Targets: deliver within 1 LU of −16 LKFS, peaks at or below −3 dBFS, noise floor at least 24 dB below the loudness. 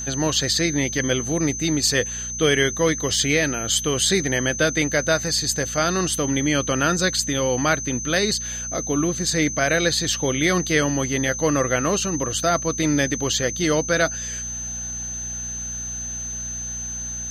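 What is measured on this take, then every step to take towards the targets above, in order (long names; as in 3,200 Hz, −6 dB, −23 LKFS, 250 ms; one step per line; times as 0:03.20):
mains hum 60 Hz; hum harmonics up to 240 Hz; level of the hum −35 dBFS; interfering tone 6,200 Hz; level of the tone −28 dBFS; integrated loudness −21.5 LKFS; sample peak −6.0 dBFS; target loudness −16.0 LKFS
→ hum removal 60 Hz, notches 4
notch filter 6,200 Hz, Q 30
level +5.5 dB
brickwall limiter −3 dBFS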